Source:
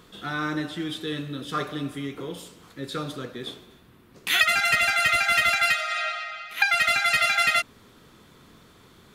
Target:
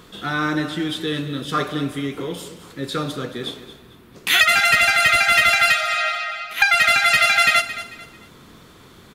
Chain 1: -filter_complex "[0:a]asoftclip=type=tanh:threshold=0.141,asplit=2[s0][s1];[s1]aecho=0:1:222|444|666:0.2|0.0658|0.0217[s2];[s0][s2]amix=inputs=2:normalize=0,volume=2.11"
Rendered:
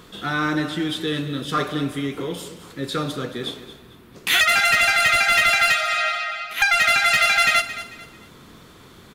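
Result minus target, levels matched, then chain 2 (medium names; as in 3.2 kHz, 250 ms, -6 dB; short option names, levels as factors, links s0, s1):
saturation: distortion +10 dB
-filter_complex "[0:a]asoftclip=type=tanh:threshold=0.335,asplit=2[s0][s1];[s1]aecho=0:1:222|444|666:0.2|0.0658|0.0217[s2];[s0][s2]amix=inputs=2:normalize=0,volume=2.11"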